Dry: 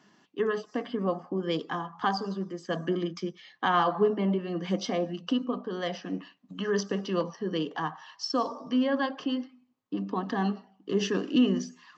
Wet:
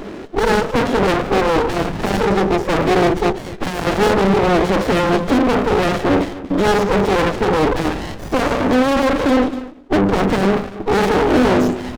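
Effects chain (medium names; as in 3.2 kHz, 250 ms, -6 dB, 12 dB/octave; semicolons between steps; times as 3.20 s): coarse spectral quantiser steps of 15 dB; low-pass 3.1 kHz 6 dB/octave; small resonant body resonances 310/440 Hz, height 11 dB, ringing for 20 ms; overdrive pedal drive 42 dB, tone 1.9 kHz, clips at -4 dBFS; delay 240 ms -16 dB; formant shift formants +2 st; sliding maximum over 33 samples; trim -1.5 dB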